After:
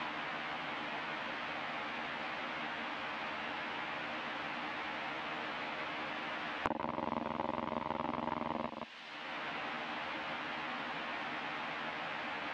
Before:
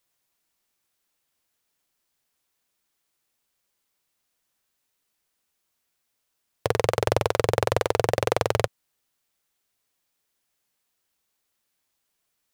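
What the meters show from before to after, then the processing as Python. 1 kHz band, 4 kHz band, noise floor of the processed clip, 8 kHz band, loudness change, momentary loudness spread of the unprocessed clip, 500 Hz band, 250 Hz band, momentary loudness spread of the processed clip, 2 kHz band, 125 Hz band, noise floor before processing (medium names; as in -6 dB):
-4.5 dB, -3.5 dB, -45 dBFS, under -20 dB, -14.5 dB, 4 LU, -15.0 dB, -2.5 dB, 2 LU, -0.5 dB, -19.0 dB, -77 dBFS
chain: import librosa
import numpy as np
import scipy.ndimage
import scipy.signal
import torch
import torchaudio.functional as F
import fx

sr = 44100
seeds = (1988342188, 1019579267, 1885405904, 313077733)

p1 = fx.env_lowpass_down(x, sr, base_hz=500.0, full_db=-25.0)
p2 = np.abs(p1)
p3 = fx.quant_dither(p2, sr, seeds[0], bits=6, dither='triangular')
p4 = p2 + F.gain(torch.from_numpy(p3), -5.5).numpy()
p5 = np.maximum(p4, 0.0)
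p6 = fx.cabinet(p5, sr, low_hz=250.0, low_slope=12, high_hz=3000.0, hz=(270.0, 400.0, 820.0), db=(7, -9, 3))
p7 = fx.doubler(p6, sr, ms=13.0, db=-2)
p8 = p7 + 10.0 ** (-9.0 / 20.0) * np.pad(p7, (int(172 * sr / 1000.0), 0))[:len(p7)]
p9 = fx.band_squash(p8, sr, depth_pct=100)
y = F.gain(torch.from_numpy(p9), 5.0).numpy()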